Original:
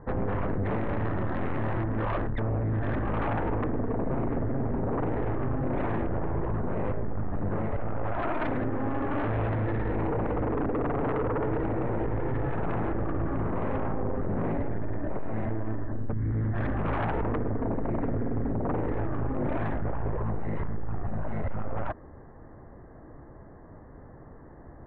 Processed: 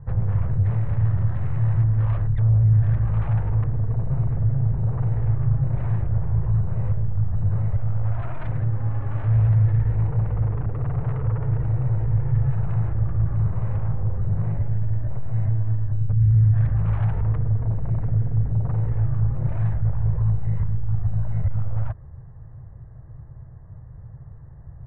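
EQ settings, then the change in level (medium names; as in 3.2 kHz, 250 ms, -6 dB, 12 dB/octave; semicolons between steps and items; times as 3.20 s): resonant low shelf 180 Hz +13.5 dB, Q 3; -7.5 dB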